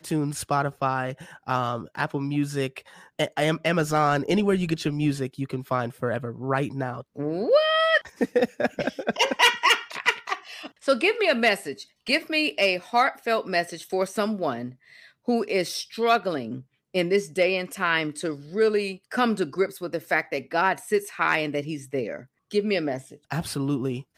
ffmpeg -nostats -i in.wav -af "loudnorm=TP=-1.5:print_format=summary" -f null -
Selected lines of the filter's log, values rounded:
Input Integrated:    -25.3 LUFS
Input True Peak:      -7.4 dBTP
Input LRA:             5.4 LU
Input Threshold:     -35.5 LUFS